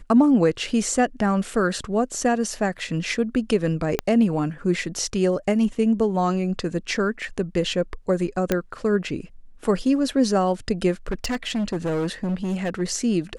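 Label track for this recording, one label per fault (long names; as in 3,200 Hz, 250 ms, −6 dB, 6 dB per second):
3.990000	3.990000	click −7 dBFS
8.520000	8.520000	click −7 dBFS
11.070000	12.820000	clipping −21 dBFS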